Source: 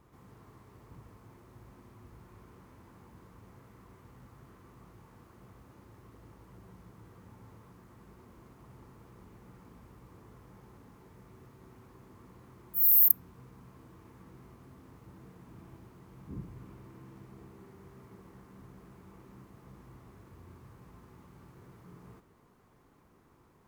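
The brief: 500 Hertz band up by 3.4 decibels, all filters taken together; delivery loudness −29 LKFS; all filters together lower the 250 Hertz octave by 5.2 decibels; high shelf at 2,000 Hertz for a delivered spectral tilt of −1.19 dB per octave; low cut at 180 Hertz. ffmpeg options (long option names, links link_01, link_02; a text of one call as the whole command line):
ffmpeg -i in.wav -af "highpass=180,equalizer=frequency=250:width_type=o:gain=-8,equalizer=frequency=500:width_type=o:gain=8,highshelf=frequency=2000:gain=-4,volume=-3.5dB" out.wav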